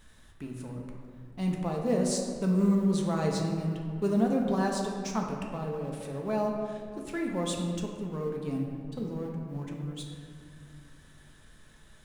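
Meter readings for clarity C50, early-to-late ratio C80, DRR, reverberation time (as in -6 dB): 3.0 dB, 4.5 dB, -0.5 dB, 2.3 s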